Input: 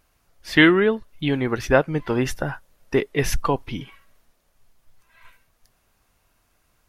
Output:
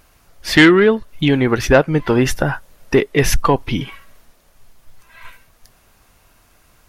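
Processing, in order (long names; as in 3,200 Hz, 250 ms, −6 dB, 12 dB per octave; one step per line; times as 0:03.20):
in parallel at +1 dB: downward compressor, threshold −29 dBFS, peak gain reduction 18 dB
on the sum: soft clipping −6.5 dBFS, distortion −18 dB
level +5.5 dB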